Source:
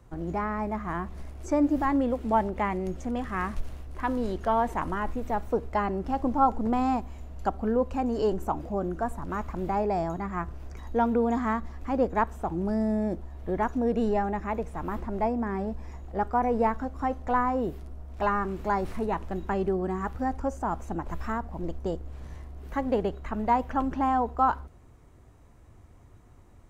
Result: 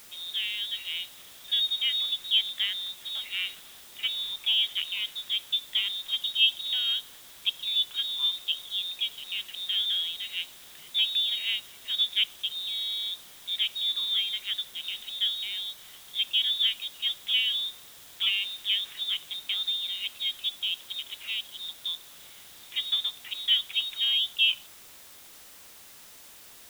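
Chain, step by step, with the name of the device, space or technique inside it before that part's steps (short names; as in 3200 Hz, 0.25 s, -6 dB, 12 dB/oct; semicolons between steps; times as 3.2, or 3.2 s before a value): scrambled radio voice (BPF 350–3000 Hz; inverted band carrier 4000 Hz; white noise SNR 19 dB)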